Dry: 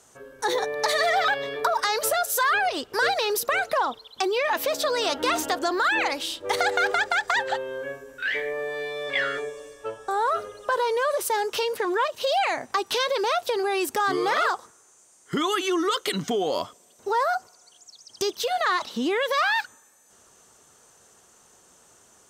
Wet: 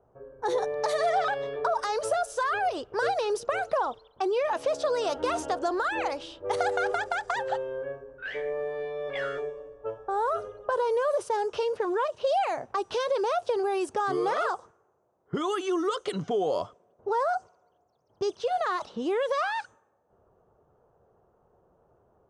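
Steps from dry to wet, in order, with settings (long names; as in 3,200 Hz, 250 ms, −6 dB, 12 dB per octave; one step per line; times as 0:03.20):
downsampling to 22,050 Hz
low-pass that shuts in the quiet parts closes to 870 Hz, open at −20.5 dBFS
graphic EQ with 10 bands 250 Hz −10 dB, 1,000 Hz −4 dB, 2,000 Hz −12 dB, 4,000 Hz −11 dB, 8,000 Hz −10 dB
level +3 dB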